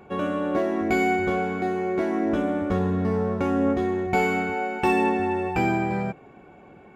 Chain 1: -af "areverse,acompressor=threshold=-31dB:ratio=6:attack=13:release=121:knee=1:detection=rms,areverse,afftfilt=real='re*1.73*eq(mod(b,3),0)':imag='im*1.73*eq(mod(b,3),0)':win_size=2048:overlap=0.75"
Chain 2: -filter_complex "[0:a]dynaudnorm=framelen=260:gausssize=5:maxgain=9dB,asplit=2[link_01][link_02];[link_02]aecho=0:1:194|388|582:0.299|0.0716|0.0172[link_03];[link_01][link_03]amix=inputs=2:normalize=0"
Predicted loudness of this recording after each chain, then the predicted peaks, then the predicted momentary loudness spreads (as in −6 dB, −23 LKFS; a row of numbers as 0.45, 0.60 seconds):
−38.0, −17.0 LKFS; −22.5, −2.0 dBFS; 8, 6 LU